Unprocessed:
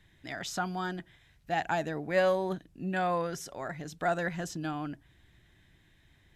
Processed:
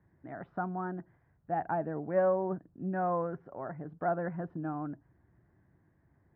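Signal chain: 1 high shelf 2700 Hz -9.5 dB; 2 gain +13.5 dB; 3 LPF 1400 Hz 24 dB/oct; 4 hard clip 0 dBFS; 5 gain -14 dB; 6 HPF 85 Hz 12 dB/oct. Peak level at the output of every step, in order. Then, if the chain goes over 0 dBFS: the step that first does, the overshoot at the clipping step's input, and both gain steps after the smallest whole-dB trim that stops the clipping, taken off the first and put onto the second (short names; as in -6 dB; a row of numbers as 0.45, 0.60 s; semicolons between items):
-17.0, -3.5, -4.5, -4.5, -18.5, -19.0 dBFS; no overload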